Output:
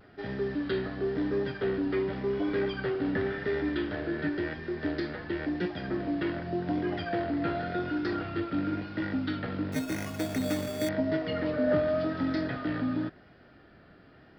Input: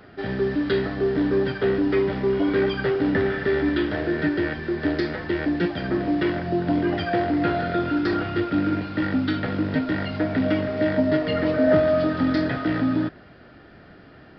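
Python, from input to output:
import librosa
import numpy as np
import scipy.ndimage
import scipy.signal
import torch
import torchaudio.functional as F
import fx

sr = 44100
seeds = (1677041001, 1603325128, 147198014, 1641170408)

y = fx.vibrato(x, sr, rate_hz=0.92, depth_cents=41.0)
y = fx.sample_hold(y, sr, seeds[0], rate_hz=4000.0, jitter_pct=0, at=(9.72, 10.89))
y = y * 10.0 ** (-8.0 / 20.0)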